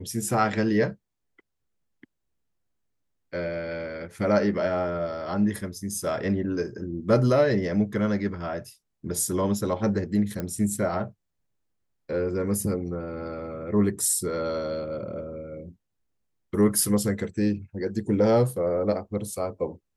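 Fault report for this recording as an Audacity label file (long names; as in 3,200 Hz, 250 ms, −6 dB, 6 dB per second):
10.400000	10.400000	click −17 dBFS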